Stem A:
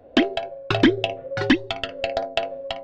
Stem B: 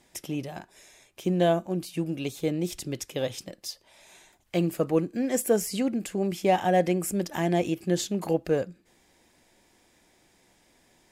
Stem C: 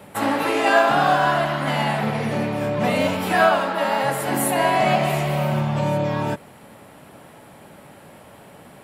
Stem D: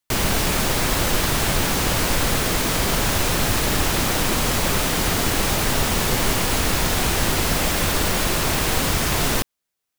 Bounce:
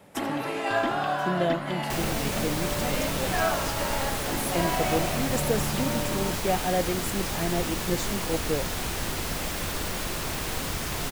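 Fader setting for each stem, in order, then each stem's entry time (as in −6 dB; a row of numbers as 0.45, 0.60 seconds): −16.0, −4.0, −10.0, −10.0 decibels; 0.00, 0.00, 0.00, 1.80 seconds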